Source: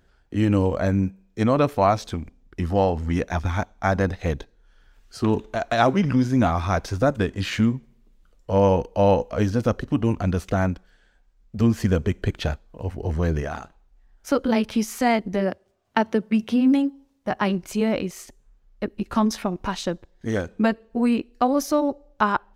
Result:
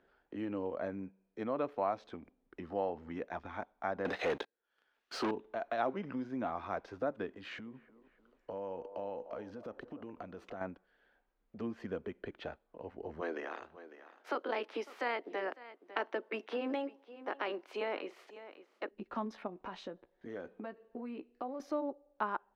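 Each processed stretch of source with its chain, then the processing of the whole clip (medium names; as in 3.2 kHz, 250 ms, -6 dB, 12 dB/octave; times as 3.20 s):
4.05–5.31 s: high-pass 340 Hz 6 dB/octave + treble shelf 2.9 kHz +11 dB + waveshaping leveller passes 5
7.36–10.61 s: treble shelf 7.2 kHz +6 dB + compression, threshold -27 dBFS + feedback echo behind a band-pass 299 ms, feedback 33%, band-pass 660 Hz, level -13 dB
13.20–18.89 s: spectral peaks clipped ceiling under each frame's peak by 16 dB + high-pass 270 Hz 24 dB/octave + delay 551 ms -21.5 dB
19.47–21.60 s: compression 4:1, threshold -26 dBFS + doubling 16 ms -12 dB
whole clip: treble shelf 2 kHz -8 dB; compression 1.5:1, threshold -48 dBFS; three-band isolator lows -21 dB, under 250 Hz, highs -20 dB, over 4.1 kHz; trim -2 dB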